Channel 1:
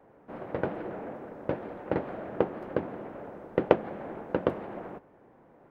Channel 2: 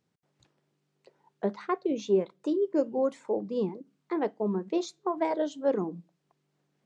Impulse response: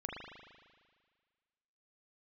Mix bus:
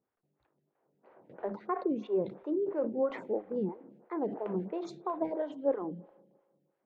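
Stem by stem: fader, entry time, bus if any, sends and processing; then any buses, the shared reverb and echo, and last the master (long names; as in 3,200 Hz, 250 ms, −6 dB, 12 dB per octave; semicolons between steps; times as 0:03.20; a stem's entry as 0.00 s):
−12.5 dB, 0.75 s, no send, high-pass filter 110 Hz 24 dB per octave; level that may fall only so fast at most 64 dB per second; automatic ducking −10 dB, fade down 1.90 s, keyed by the second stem
−2.5 dB, 0.00 s, send −17.5 dB, low-pass filter 1,600 Hz 12 dB per octave; level that may fall only so fast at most 130 dB per second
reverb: on, RT60 1.7 s, pre-delay 38 ms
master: phaser with staggered stages 3 Hz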